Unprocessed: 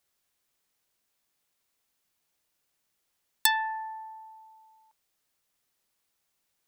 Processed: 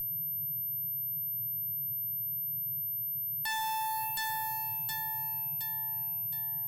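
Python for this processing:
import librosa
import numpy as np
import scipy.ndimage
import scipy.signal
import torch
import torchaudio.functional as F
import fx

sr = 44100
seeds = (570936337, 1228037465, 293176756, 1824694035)

y = fx.high_shelf(x, sr, hz=6300.0, db=-3.5)
y = fx.leveller(y, sr, passes=5)
y = fx.echo_feedback(y, sr, ms=718, feedback_pct=41, wet_db=-13.5)
y = fx.dmg_noise_band(y, sr, seeds[0], low_hz=99.0, high_hz=160.0, level_db=-46.0)
y = fx.bass_treble(y, sr, bass_db=-1, treble_db=fx.steps((0.0, -9.0), (4.15, 7.0)))
y = y + 10.0 ** (-28.0 / 20.0) * np.sin(2.0 * np.pi * 13000.0 * np.arange(len(y)) / sr)
y = fx.tube_stage(y, sr, drive_db=32.0, bias=0.4)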